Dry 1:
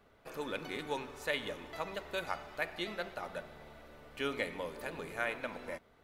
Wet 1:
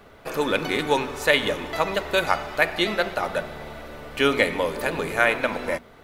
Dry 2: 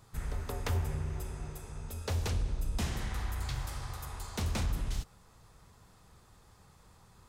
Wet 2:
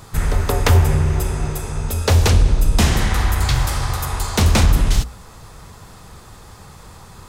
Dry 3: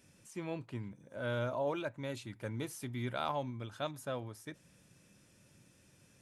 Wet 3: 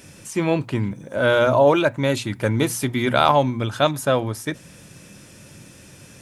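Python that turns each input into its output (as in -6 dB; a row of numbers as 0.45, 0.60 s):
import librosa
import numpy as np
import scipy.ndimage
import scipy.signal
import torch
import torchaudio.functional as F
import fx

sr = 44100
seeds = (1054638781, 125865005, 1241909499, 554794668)

y = fx.hum_notches(x, sr, base_hz=60, count=4)
y = y * 10.0 ** (-1.5 / 20.0) / np.max(np.abs(y))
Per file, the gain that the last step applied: +16.0, +19.5, +20.0 dB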